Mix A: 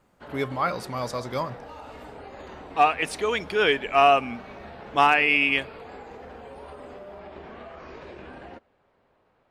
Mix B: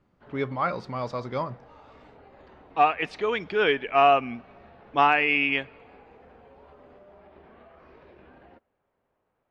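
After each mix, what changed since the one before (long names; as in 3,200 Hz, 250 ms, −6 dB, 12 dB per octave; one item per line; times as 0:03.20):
background −9.5 dB
master: add high-frequency loss of the air 200 metres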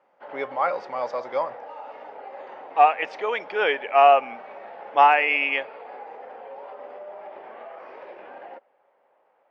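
background +9.0 dB
master: add loudspeaker in its box 470–6,600 Hz, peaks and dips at 550 Hz +8 dB, 830 Hz +8 dB, 2,000 Hz +3 dB, 4,000 Hz −7 dB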